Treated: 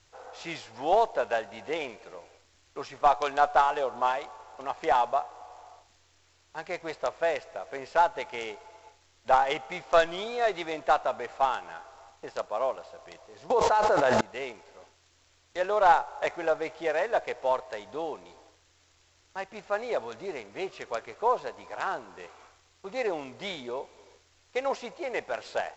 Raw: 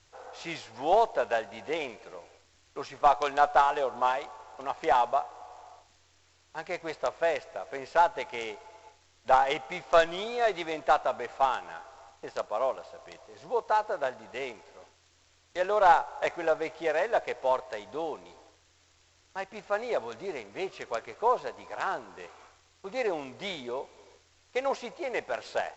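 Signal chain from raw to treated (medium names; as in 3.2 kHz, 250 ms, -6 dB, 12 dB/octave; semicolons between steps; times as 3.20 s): 13.50–14.21 s: level flattener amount 100%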